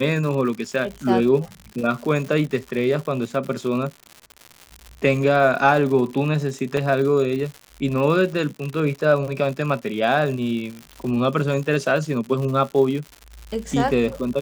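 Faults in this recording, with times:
surface crackle 150 per second −29 dBFS
0:06.77: drop-out 2.1 ms

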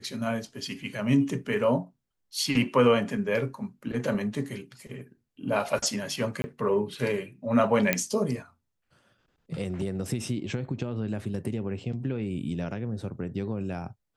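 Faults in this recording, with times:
0:06.42–0:06.44: drop-out 20 ms
0:07.93: click −6 dBFS

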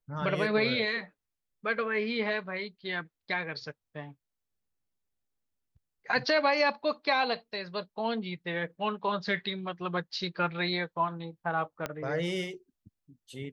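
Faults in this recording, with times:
0:11.86: click −17 dBFS

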